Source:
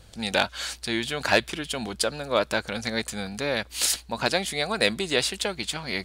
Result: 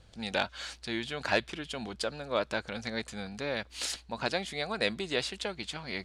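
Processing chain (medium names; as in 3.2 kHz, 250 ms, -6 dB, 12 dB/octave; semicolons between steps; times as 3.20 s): distance through air 64 m; trim -6.5 dB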